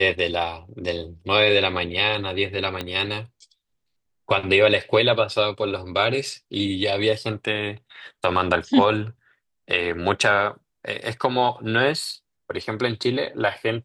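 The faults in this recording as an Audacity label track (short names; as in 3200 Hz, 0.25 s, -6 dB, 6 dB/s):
2.810000	2.810000	pop -13 dBFS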